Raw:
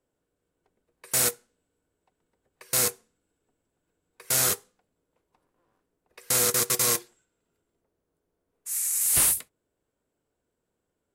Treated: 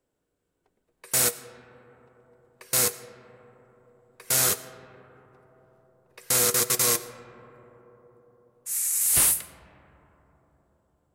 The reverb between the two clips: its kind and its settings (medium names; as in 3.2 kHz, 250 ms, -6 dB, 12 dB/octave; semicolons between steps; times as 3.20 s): algorithmic reverb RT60 4.5 s, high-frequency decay 0.25×, pre-delay 50 ms, DRR 14 dB; trim +1 dB